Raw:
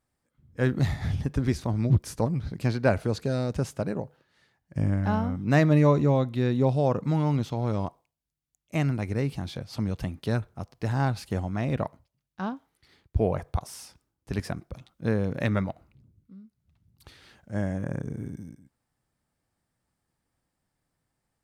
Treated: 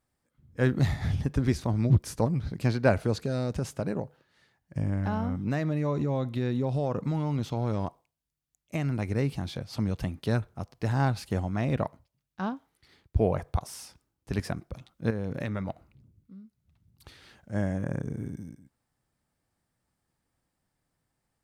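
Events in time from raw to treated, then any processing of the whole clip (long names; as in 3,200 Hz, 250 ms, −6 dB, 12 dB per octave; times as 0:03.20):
0:03.20–0:09.08: downward compressor, threshold −24 dBFS
0:15.10–0:15.70: downward compressor, threshold −28 dBFS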